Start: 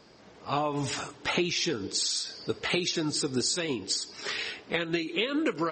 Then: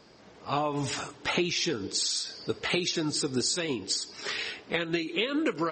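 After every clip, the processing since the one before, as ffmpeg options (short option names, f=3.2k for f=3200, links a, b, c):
-af anull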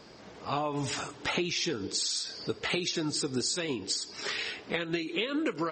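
-af "acompressor=threshold=-43dB:ratio=1.5,volume=4dB"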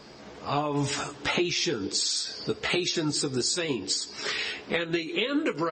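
-filter_complex "[0:a]asplit=2[a][b];[b]adelay=14,volume=-7.5dB[c];[a][c]amix=inputs=2:normalize=0,volume=3dB"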